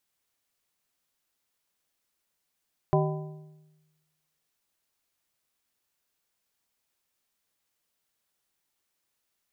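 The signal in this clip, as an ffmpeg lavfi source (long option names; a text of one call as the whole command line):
ffmpeg -f lavfi -i "aevalsrc='0.0891*pow(10,-3*t/1.21)*sin(2*PI*154*t)+0.0708*pow(10,-3*t/0.919)*sin(2*PI*385*t)+0.0562*pow(10,-3*t/0.798)*sin(2*PI*616*t)+0.0447*pow(10,-3*t/0.747)*sin(2*PI*770*t)+0.0355*pow(10,-3*t/0.69)*sin(2*PI*1001*t)':duration=1.55:sample_rate=44100" out.wav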